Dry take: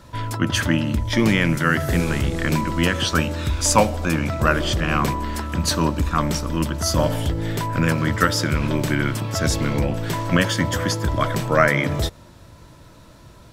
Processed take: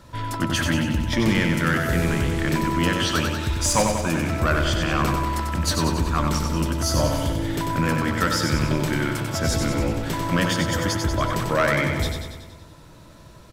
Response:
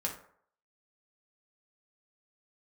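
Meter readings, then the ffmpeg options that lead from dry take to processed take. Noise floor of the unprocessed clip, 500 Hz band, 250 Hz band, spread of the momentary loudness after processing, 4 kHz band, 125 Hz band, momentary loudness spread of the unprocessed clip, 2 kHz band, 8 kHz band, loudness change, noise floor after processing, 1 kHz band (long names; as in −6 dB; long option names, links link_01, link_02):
−46 dBFS, −2.0 dB, −1.5 dB, 5 LU, −1.0 dB, −2.0 dB, 6 LU, −2.0 dB, −1.0 dB, −1.5 dB, −46 dBFS, −1.5 dB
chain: -filter_complex "[0:a]asoftclip=type=tanh:threshold=-10.5dB,asplit=2[link_01][link_02];[link_02]aecho=0:1:94|188|282|376|470|564|658|752:0.562|0.337|0.202|0.121|0.0729|0.0437|0.0262|0.0157[link_03];[link_01][link_03]amix=inputs=2:normalize=0,volume=-2dB"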